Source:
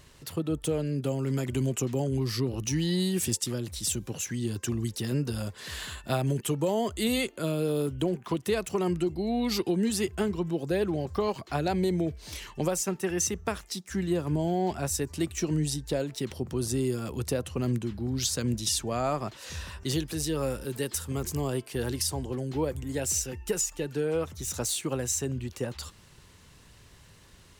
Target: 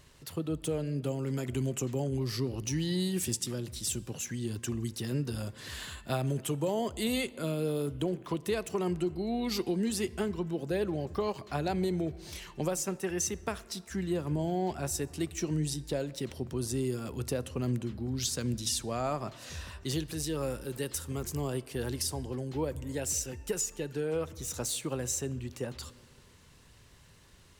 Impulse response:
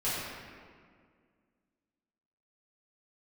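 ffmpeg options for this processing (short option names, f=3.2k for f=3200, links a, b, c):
-filter_complex "[0:a]asplit=2[a][b];[1:a]atrim=start_sample=2205,asetrate=41013,aresample=44100[c];[b][c]afir=irnorm=-1:irlink=0,volume=-26.5dB[d];[a][d]amix=inputs=2:normalize=0,volume=-4dB"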